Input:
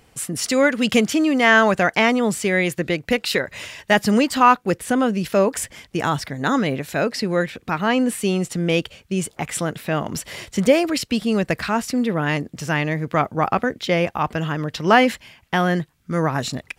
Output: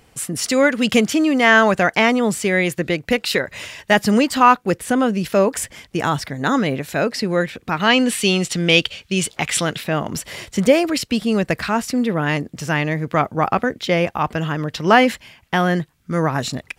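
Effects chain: 7.8–9.84 bell 3600 Hz +11 dB 2 oct; gain +1.5 dB

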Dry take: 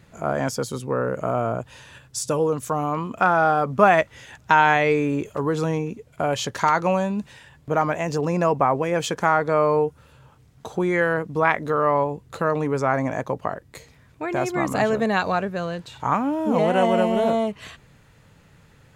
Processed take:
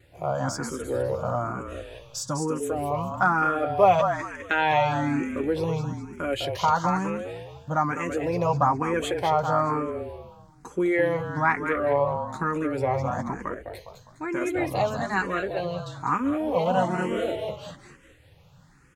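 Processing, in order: vibrato 2 Hz 43 cents; notch comb 220 Hz; frequency-shifting echo 0.204 s, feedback 36%, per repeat -36 Hz, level -7 dB; endless phaser +1.1 Hz

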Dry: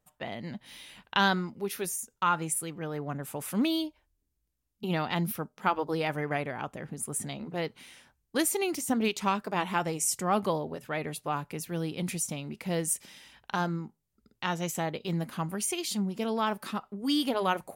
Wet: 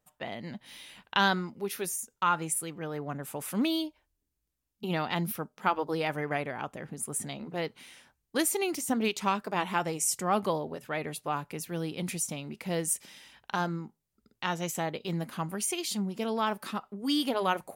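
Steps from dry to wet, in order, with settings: low shelf 140 Hz -5 dB

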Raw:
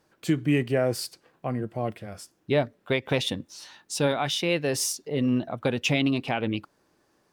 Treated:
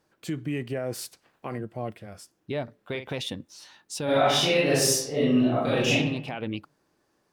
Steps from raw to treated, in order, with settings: 0.92–1.57 spectral limiter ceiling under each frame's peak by 13 dB; limiter -18 dBFS, peak gain reduction 5 dB; 2.63–3.08 doubler 48 ms -8.5 dB; 4.04–5.92 reverb throw, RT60 0.86 s, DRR -10 dB; gain -3.5 dB

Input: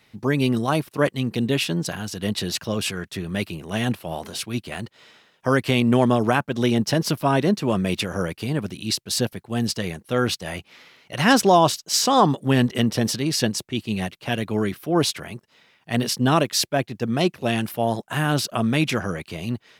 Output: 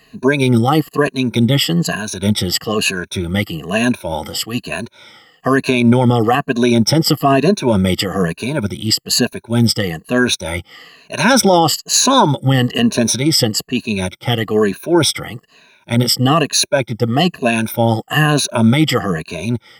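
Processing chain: moving spectral ripple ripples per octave 1.5, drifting -1.1 Hz, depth 20 dB; maximiser +6 dB; gain -1 dB

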